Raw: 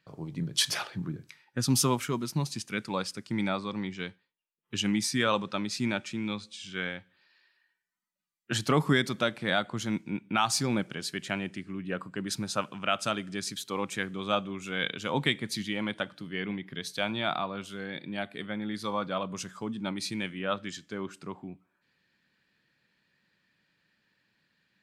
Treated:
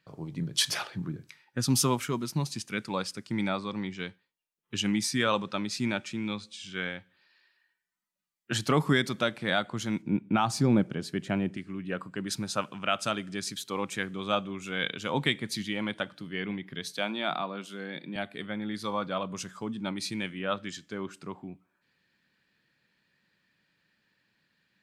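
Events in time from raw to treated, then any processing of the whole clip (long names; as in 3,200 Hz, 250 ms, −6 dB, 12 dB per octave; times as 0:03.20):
0:10.02–0:11.57: tilt shelving filter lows +7 dB
0:16.92–0:18.16: elliptic high-pass filter 150 Hz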